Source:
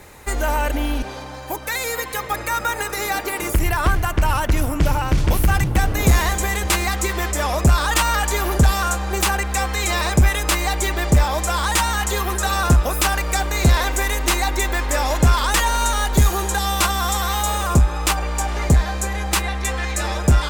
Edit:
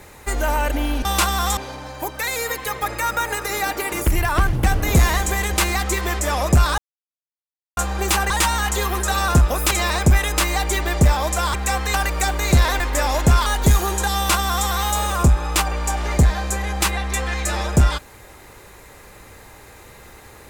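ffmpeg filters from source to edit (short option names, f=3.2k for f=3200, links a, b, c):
-filter_complex "[0:a]asplit=12[a][b][c][d][e][f][g][h][i][j][k][l];[a]atrim=end=1.052[m];[b]atrim=start=16.668:end=17.192[n];[c]atrim=start=1.048:end=4.012[o];[d]atrim=start=5.648:end=7.9,asetpts=PTS-STARTPTS,afade=t=out:st=2.248:d=0.004:c=hsin[p];[e]atrim=start=7.9:end=8.89,asetpts=PTS-STARTPTS,volume=0[q];[f]atrim=start=8.89:end=9.422,asetpts=PTS-STARTPTS,afade=t=in:d=0.004:c=hsin[r];[g]atrim=start=11.648:end=13.062[s];[h]atrim=start=9.818:end=11.652[t];[i]atrim=start=9.418:end=9.822[u];[j]atrim=start=13.058:end=13.922[v];[k]atrim=start=14.758:end=15.422[w];[l]atrim=start=15.968[x];[m][n]acrossfade=d=0.004:c1=hsin:c2=hsin[y];[y][o]acrossfade=d=0.004:c1=hsin:c2=hsin[z];[p][q][r]concat=n=3:v=0:a=1[aa];[z][aa]acrossfade=d=0.004:c1=hsin:c2=hsin[ab];[ab][s]acrossfade=d=0.004:c1=hsin:c2=hsin[ac];[ac][t]acrossfade=d=0.004:c1=hsin:c2=hsin[ad];[ad][u]acrossfade=d=0.004:c1=hsin:c2=hsin[ae];[ae][v]acrossfade=d=0.004:c1=hsin:c2=hsin[af];[af][w]acrossfade=d=0.004:c1=hsin:c2=hsin[ag];[ag][x]acrossfade=d=0.004:c1=hsin:c2=hsin"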